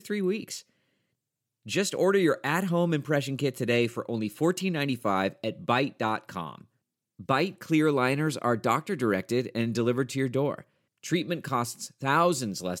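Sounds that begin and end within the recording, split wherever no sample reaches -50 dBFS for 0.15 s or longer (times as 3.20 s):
1.66–6.64 s
7.19–10.62 s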